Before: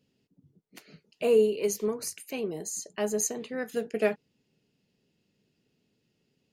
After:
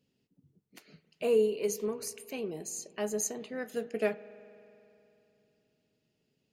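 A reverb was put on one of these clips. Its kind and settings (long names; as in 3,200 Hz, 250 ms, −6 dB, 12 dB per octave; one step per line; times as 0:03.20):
spring reverb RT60 3 s, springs 44 ms, chirp 30 ms, DRR 17 dB
level −4 dB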